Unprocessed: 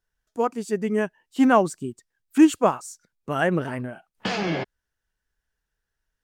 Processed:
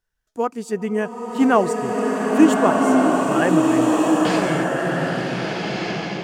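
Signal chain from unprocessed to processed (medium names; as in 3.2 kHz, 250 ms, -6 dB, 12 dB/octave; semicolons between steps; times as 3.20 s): swelling reverb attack 1550 ms, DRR -3.5 dB; trim +1 dB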